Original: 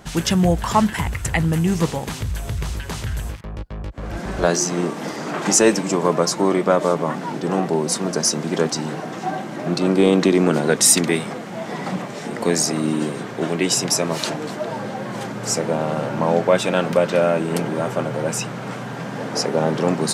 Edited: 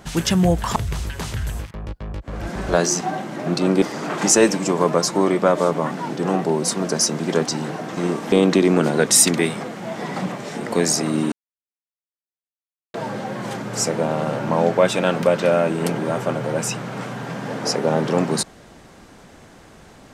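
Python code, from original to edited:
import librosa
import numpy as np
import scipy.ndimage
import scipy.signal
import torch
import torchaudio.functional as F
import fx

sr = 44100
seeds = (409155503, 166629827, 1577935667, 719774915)

y = fx.edit(x, sr, fx.cut(start_s=0.76, length_s=1.7),
    fx.swap(start_s=4.71, length_s=0.35, other_s=9.21, other_length_s=0.81),
    fx.silence(start_s=13.02, length_s=1.62), tone=tone)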